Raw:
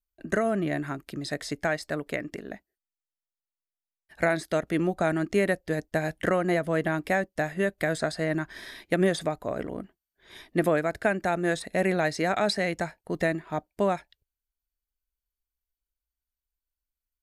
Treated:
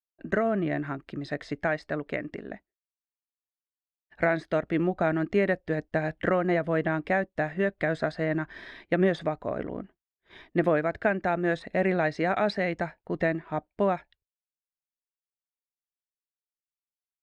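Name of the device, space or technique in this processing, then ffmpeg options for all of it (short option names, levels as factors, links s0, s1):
hearing-loss simulation: -af "lowpass=2800,agate=range=0.0224:threshold=0.00282:ratio=3:detection=peak"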